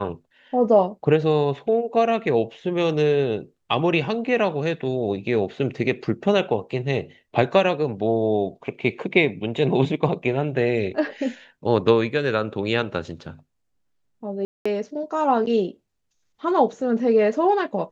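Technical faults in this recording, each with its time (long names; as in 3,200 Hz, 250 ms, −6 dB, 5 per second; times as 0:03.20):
0:14.45–0:14.65: drop-out 205 ms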